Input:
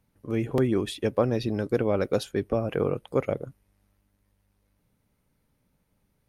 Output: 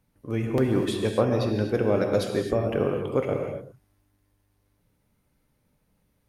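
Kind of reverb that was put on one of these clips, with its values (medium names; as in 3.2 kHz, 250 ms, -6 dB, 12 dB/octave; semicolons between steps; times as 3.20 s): gated-style reverb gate 290 ms flat, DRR 2.5 dB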